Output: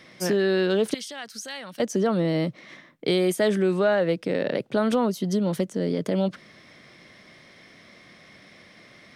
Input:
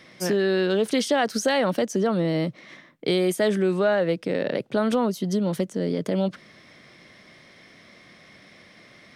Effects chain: 0.94–1.8 passive tone stack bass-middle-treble 5-5-5

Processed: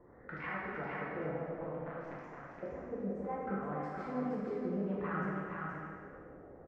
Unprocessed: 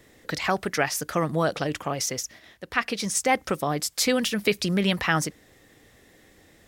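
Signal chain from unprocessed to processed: Wiener smoothing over 15 samples; band shelf 6400 Hz -8 dB 2.3 oct; compressor 5:1, threshold -37 dBFS, peak gain reduction 17.5 dB; limiter -30.5 dBFS, peak gain reduction 8.5 dB; 1.31–2.23 power-law curve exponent 3; LFO low-pass sine 0.61 Hz 520–1800 Hz; echo 0.47 s -3.5 dB; plate-style reverb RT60 1.9 s, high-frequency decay 0.95×, DRR -6.5 dB; gain -7 dB

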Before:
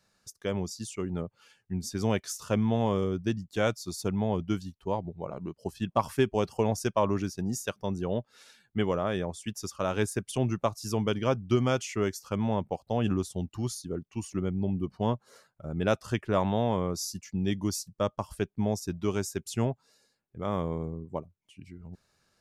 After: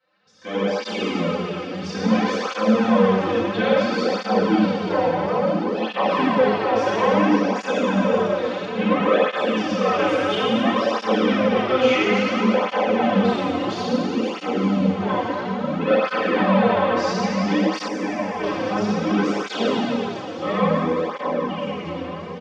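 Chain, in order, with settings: soft clip -26.5 dBFS, distortion -9 dB; LPF 3300 Hz 24 dB/oct; limiter -32.5 dBFS, peak gain reduction 7.5 dB; Bessel high-pass 320 Hz, order 2; comb 3.9 ms, depth 74%; reverb RT60 3.1 s, pre-delay 5 ms, DRR -10.5 dB; AGC gain up to 15 dB; 17.88–18.44 fixed phaser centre 800 Hz, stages 8; swung echo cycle 1.473 s, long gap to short 1.5:1, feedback 50%, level -14 dB; tape flanging out of phase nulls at 0.59 Hz, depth 5 ms

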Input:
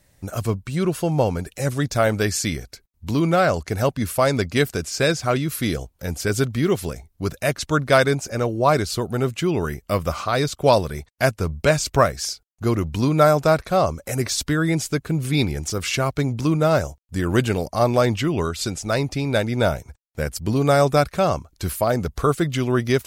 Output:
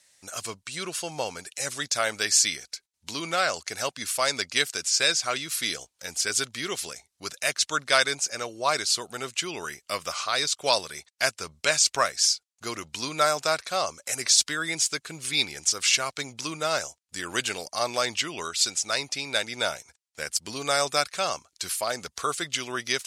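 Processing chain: weighting filter ITU-R 468; gain -6 dB

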